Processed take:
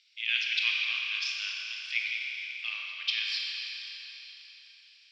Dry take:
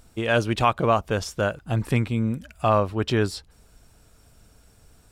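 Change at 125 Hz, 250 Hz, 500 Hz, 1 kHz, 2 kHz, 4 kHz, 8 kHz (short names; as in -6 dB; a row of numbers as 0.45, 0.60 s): under -40 dB, under -40 dB, under -40 dB, -28.0 dB, +1.0 dB, +6.0 dB, -7.5 dB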